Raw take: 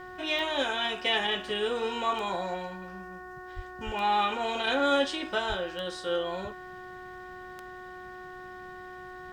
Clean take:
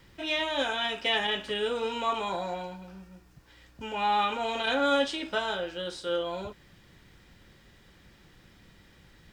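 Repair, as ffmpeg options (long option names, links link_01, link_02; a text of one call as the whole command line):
ffmpeg -i in.wav -filter_complex "[0:a]adeclick=threshold=4,bandreject=frequency=366.6:width_type=h:width=4,bandreject=frequency=733.2:width_type=h:width=4,bandreject=frequency=1099.8:width_type=h:width=4,bandreject=frequency=1466.4:width_type=h:width=4,bandreject=frequency=1833:width_type=h:width=4,asplit=3[link_01][link_02][link_03];[link_01]afade=type=out:start_time=3.55:duration=0.02[link_04];[link_02]highpass=frequency=140:width=0.5412,highpass=frequency=140:width=1.3066,afade=type=in:start_time=3.55:duration=0.02,afade=type=out:start_time=3.67:duration=0.02[link_05];[link_03]afade=type=in:start_time=3.67:duration=0.02[link_06];[link_04][link_05][link_06]amix=inputs=3:normalize=0,asplit=3[link_07][link_08][link_09];[link_07]afade=type=out:start_time=3.85:duration=0.02[link_10];[link_08]highpass=frequency=140:width=0.5412,highpass=frequency=140:width=1.3066,afade=type=in:start_time=3.85:duration=0.02,afade=type=out:start_time=3.97:duration=0.02[link_11];[link_09]afade=type=in:start_time=3.97:duration=0.02[link_12];[link_10][link_11][link_12]amix=inputs=3:normalize=0,asplit=3[link_13][link_14][link_15];[link_13]afade=type=out:start_time=5.48:duration=0.02[link_16];[link_14]highpass=frequency=140:width=0.5412,highpass=frequency=140:width=1.3066,afade=type=in:start_time=5.48:duration=0.02,afade=type=out:start_time=5.6:duration=0.02[link_17];[link_15]afade=type=in:start_time=5.6:duration=0.02[link_18];[link_16][link_17][link_18]amix=inputs=3:normalize=0" out.wav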